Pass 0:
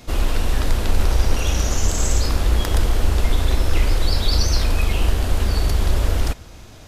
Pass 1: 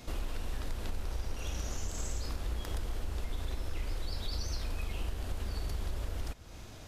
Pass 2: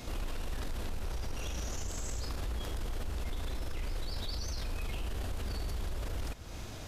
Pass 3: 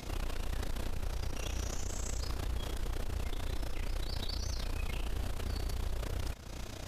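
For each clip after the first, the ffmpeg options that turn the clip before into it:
-af "acompressor=threshold=-29dB:ratio=3,volume=-6.5dB"
-af "alimiter=level_in=10.5dB:limit=-24dB:level=0:latency=1:release=13,volume=-10.5dB,volume=5dB"
-af "tremolo=f=30:d=0.788,volume=3.5dB"

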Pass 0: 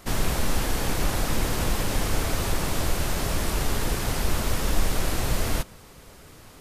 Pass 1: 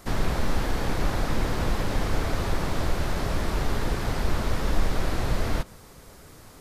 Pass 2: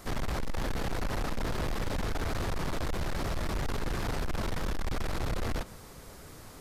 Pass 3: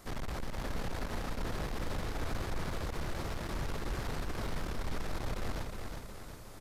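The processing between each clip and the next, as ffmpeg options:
-filter_complex "[0:a]acrossover=split=4700[a][b];[b]acompressor=threshold=-48dB:ratio=4:attack=1:release=60[c];[a][c]amix=inputs=2:normalize=0,equalizer=f=2.8k:w=2:g=-4.5"
-af "asoftclip=type=tanh:threshold=-27.5dB"
-af "aecho=1:1:363|726|1089|1452|1815|2178|2541:0.562|0.292|0.152|0.0791|0.0411|0.0214|0.0111,volume=-6dB"

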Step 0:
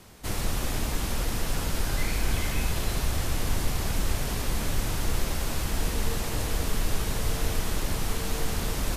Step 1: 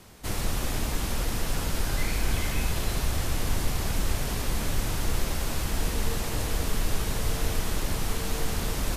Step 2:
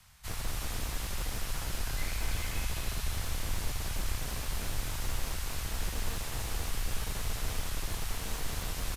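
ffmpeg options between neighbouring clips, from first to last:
-af anull
-filter_complex "[0:a]acrossover=split=150|820|1800[a][b][c][d];[b]acrusher=bits=3:dc=4:mix=0:aa=0.000001[e];[d]aecho=1:1:230:0.631[f];[a][e][c][f]amix=inputs=4:normalize=0,volume=-6.5dB"

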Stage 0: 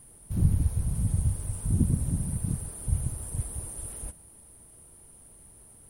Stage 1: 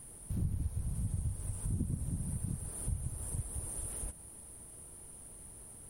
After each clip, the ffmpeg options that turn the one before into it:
-af "acompressor=threshold=-39dB:ratio=2.5,volume=1.5dB"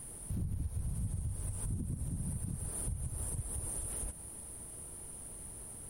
-af "alimiter=level_in=8.5dB:limit=-24dB:level=0:latency=1:release=139,volume=-8.5dB,volume=4dB"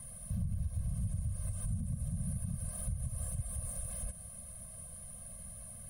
-filter_complex "[0:a]acrossover=split=290|530|2400[a][b][c][d];[d]asoftclip=type=hard:threshold=-37dB[e];[a][b][c][e]amix=inputs=4:normalize=0,afftfilt=real='re*eq(mod(floor(b*sr/1024/250),2),0)':imag='im*eq(mod(floor(b*sr/1024/250),2),0)':win_size=1024:overlap=0.75,volume=1.5dB"

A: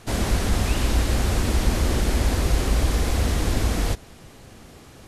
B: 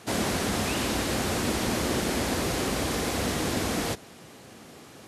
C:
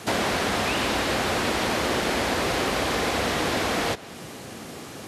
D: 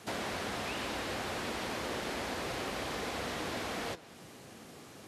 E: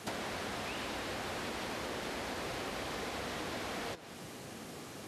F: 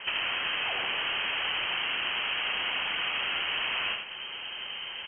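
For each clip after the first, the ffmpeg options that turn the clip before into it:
-af "highpass=160"
-filter_complex "[0:a]acrossover=split=440|4500[a][b][c];[a]acompressor=threshold=-41dB:ratio=4[d];[b]acompressor=threshold=-32dB:ratio=4[e];[c]acompressor=threshold=-50dB:ratio=4[f];[d][e][f]amix=inputs=3:normalize=0,volume=9dB"
-af "flanger=delay=3.8:depth=6.9:regen=84:speed=1.3:shape=triangular,volume=-8dB"
-af "acompressor=threshold=-41dB:ratio=6,volume=4.5dB"
-af "aecho=1:1:84:0.596,lowpass=f=2.8k:t=q:w=0.5098,lowpass=f=2.8k:t=q:w=0.6013,lowpass=f=2.8k:t=q:w=0.9,lowpass=f=2.8k:t=q:w=2.563,afreqshift=-3300,volume=8dB"

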